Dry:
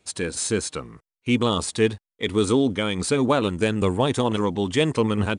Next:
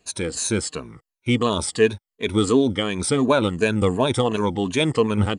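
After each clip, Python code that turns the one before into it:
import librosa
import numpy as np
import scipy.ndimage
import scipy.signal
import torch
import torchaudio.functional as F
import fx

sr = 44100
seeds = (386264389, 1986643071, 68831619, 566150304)

y = fx.spec_ripple(x, sr, per_octave=1.5, drift_hz=-2.8, depth_db=12)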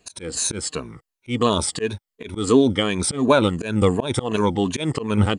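y = fx.auto_swell(x, sr, attack_ms=160.0)
y = y * 10.0 ** (2.5 / 20.0)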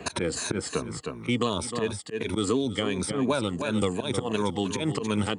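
y = scipy.signal.sosfilt(scipy.signal.butter(2, 77.0, 'highpass', fs=sr, output='sos'), x)
y = y + 10.0 ** (-12.0 / 20.0) * np.pad(y, (int(309 * sr / 1000.0), 0))[:len(y)]
y = fx.band_squash(y, sr, depth_pct=100)
y = y * 10.0 ** (-7.5 / 20.0)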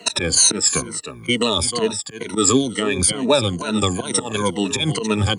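y = fx.spec_ripple(x, sr, per_octave=1.9, drift_hz=-2.2, depth_db=17)
y = fx.high_shelf(y, sr, hz=3300.0, db=11.0)
y = fx.band_widen(y, sr, depth_pct=70)
y = y * 10.0 ** (3.5 / 20.0)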